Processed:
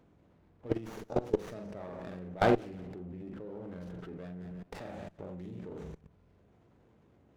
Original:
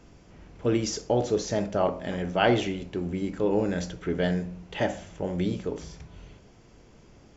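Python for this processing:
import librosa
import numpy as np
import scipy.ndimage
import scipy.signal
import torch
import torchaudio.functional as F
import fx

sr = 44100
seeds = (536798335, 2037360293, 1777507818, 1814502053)

y = fx.wiener(x, sr, points=9)
y = scipy.signal.sosfilt(scipy.signal.butter(4, 61.0, 'highpass', fs=sr, output='sos'), y)
y = fx.doubler(y, sr, ms=44.0, db=-5.0)
y = fx.echo_feedback(y, sr, ms=175, feedback_pct=36, wet_db=-18.5)
y = fx.level_steps(y, sr, step_db=21)
y = fx.high_shelf(y, sr, hz=2200.0, db=-9.5, at=(2.19, 4.41))
y = fx.running_max(y, sr, window=9)
y = F.gain(torch.from_numpy(y), -1.0).numpy()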